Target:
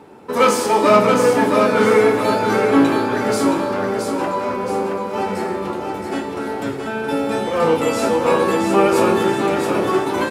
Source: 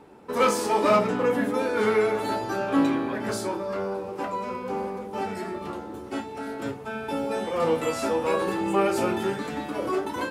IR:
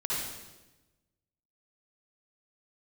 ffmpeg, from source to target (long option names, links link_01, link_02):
-filter_complex "[0:a]highpass=70,aecho=1:1:672|1344|2016|2688|3360:0.562|0.242|0.104|0.0447|0.0192,asplit=2[link_01][link_02];[1:a]atrim=start_sample=2205[link_03];[link_02][link_03]afir=irnorm=-1:irlink=0,volume=-15dB[link_04];[link_01][link_04]amix=inputs=2:normalize=0,volume=6dB"